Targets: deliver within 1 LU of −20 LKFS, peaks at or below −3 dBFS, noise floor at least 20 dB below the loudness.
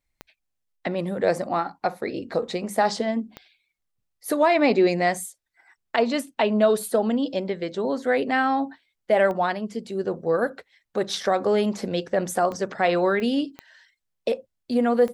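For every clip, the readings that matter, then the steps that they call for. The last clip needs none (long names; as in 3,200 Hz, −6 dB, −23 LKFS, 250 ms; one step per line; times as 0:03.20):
number of clicks 7; integrated loudness −24.0 LKFS; sample peak −7.5 dBFS; target loudness −20.0 LKFS
→ click removal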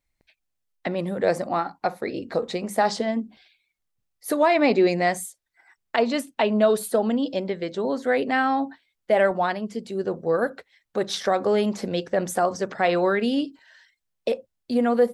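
number of clicks 0; integrated loudness −24.0 LKFS; sample peak −7.5 dBFS; target loudness −20.0 LKFS
→ level +4 dB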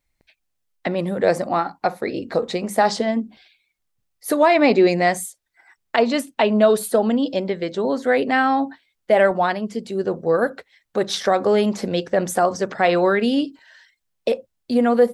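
integrated loudness −20.5 LKFS; sample peak −3.5 dBFS; background noise floor −75 dBFS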